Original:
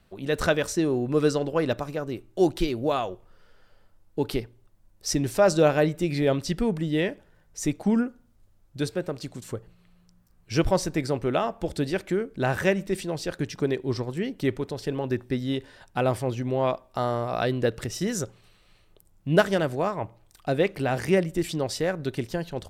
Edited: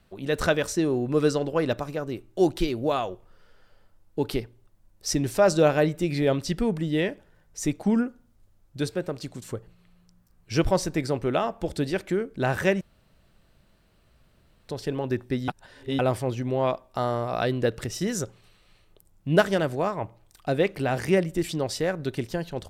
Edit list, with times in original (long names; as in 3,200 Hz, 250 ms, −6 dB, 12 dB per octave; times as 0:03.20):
0:12.81–0:14.69: fill with room tone
0:15.48–0:15.99: reverse